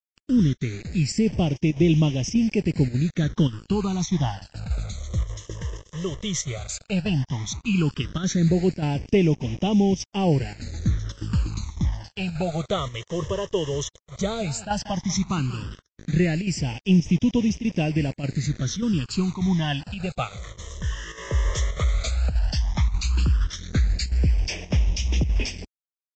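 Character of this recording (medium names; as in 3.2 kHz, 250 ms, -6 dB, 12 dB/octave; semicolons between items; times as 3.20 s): a quantiser's noise floor 6-bit, dither none; chopped level 1.7 Hz, depth 60%, duty 90%; phasing stages 12, 0.13 Hz, lowest notch 240–1400 Hz; Vorbis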